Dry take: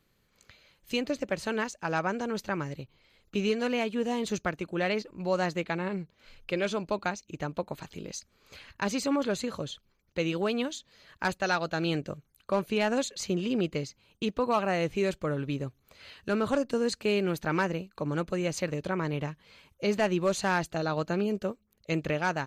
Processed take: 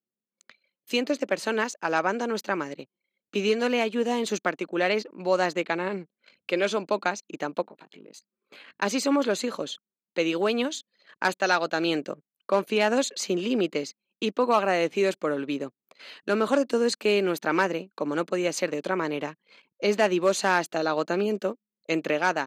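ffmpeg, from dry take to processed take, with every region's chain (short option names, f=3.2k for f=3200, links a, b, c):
-filter_complex "[0:a]asettb=1/sr,asplit=3[a][b][c];[a]atrim=end=7.624[d];[b]atrim=start=7.62:end=8.82,asetpts=PTS-STARTPTS,afade=t=in:d=0.004:c=qsin,afade=t=out:st=1.196:d=0.004:c=qsin,equalizer=f=5.8k:t=o:w=0.53:g=-11.5,acompressor=threshold=-49dB:ratio=5:attack=3.2:release=140:knee=1:detection=peak,asplit=2[e][f];[f]adelay=19,volume=-5dB[g];[e][g]amix=inputs=2:normalize=0,atrim=end_sample=52920[h];[c]atrim=start=8.816[i];[d][h]acrossfade=d=0.004:c1=hsin:c2=qsin[j];[j][i]acrossfade=d=0.004:c1=qsin:c2=hsin,anlmdn=0.001,highpass=f=230:w=0.5412,highpass=f=230:w=1.3066,volume=5dB"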